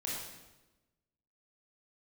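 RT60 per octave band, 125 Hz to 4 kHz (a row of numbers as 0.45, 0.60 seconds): 1.3, 1.3, 1.1, 1.0, 0.95, 0.90 seconds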